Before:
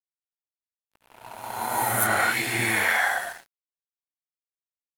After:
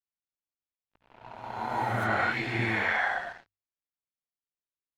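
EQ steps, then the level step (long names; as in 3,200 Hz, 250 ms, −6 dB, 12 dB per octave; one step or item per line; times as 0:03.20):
high-frequency loss of the air 200 metres
low-shelf EQ 270 Hz +6 dB
mains-hum notches 50/100 Hz
−3.5 dB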